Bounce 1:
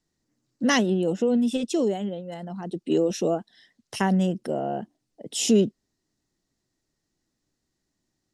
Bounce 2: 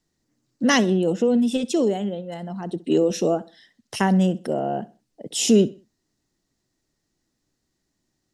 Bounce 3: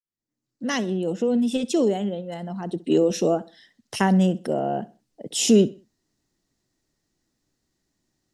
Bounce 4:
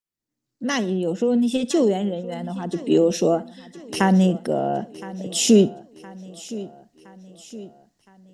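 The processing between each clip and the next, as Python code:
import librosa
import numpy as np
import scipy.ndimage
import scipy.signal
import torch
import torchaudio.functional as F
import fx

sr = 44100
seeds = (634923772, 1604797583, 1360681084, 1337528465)

y1 = fx.echo_feedback(x, sr, ms=64, feedback_pct=33, wet_db=-19.5)
y1 = F.gain(torch.from_numpy(y1), 3.0).numpy()
y2 = fx.fade_in_head(y1, sr, length_s=1.78)
y3 = fx.echo_feedback(y2, sr, ms=1016, feedback_pct=50, wet_db=-17.5)
y3 = F.gain(torch.from_numpy(y3), 2.0).numpy()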